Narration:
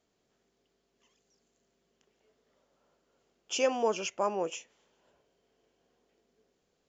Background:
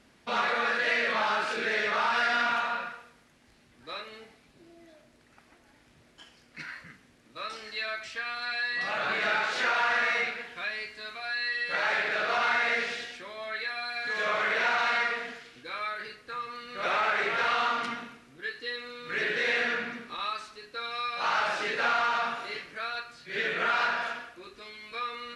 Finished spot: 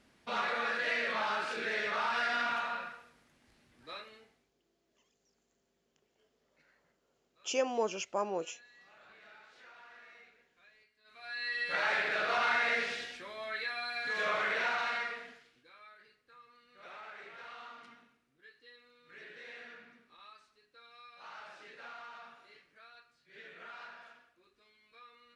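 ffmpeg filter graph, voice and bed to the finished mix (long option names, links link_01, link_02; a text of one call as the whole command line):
ffmpeg -i stem1.wav -i stem2.wav -filter_complex "[0:a]adelay=3950,volume=-3.5dB[link_01];[1:a]volume=20dB,afade=type=out:start_time=3.9:duration=0.64:silence=0.0668344,afade=type=in:start_time=11.04:duration=0.58:silence=0.0501187,afade=type=out:start_time=14.23:duration=1.5:silence=0.11885[link_02];[link_01][link_02]amix=inputs=2:normalize=0" out.wav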